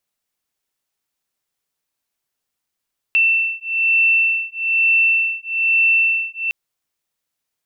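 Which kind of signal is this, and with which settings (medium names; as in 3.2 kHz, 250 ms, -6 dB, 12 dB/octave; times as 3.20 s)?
beating tones 2.68 kHz, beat 1.1 Hz, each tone -17 dBFS 3.36 s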